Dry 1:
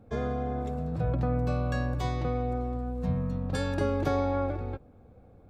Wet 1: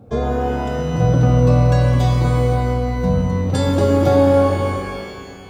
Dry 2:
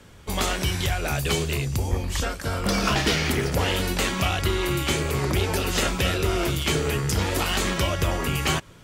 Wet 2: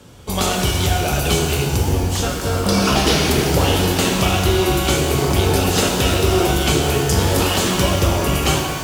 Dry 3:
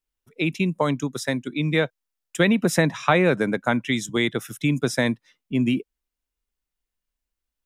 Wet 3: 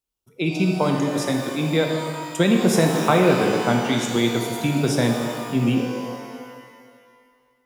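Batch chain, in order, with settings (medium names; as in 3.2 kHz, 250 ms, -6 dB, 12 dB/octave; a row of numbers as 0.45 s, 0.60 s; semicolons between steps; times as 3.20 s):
high-pass 43 Hz; peaking EQ 1.9 kHz -8 dB 0.8 oct; pitch-shifted reverb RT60 2 s, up +12 st, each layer -8 dB, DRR 1.5 dB; peak normalisation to -3 dBFS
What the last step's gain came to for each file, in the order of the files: +10.5 dB, +5.5 dB, +0.5 dB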